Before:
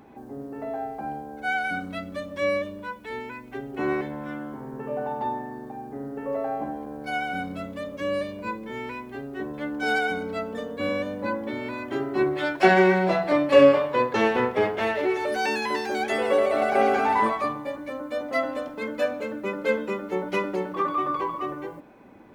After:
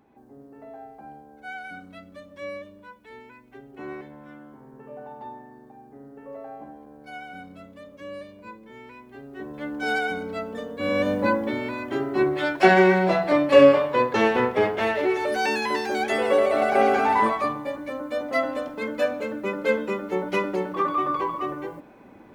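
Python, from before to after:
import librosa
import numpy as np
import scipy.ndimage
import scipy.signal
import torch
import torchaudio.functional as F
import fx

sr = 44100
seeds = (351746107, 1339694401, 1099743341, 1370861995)

y = fx.gain(x, sr, db=fx.line((8.9, -10.5), (9.69, -1.0), (10.8, -1.0), (11.1, 8.5), (11.75, 1.5)))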